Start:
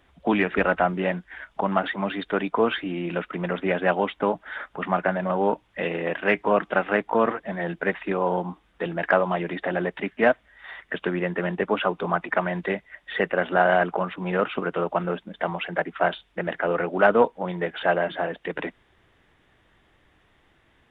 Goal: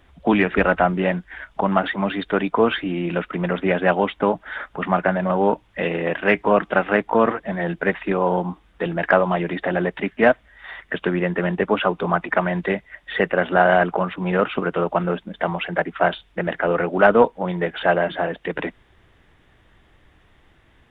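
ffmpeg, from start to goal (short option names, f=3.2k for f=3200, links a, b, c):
-af "lowshelf=f=120:g=7.5,volume=3.5dB"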